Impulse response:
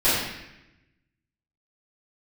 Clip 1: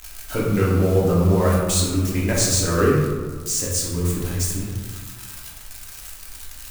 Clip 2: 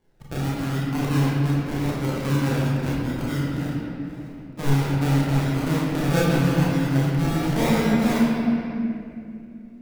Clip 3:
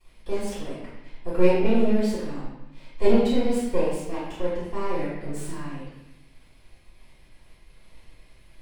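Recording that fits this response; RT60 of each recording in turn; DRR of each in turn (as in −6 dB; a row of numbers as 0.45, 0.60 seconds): 3; 1.6, 2.6, 0.90 seconds; −5.0, −7.0, −15.5 decibels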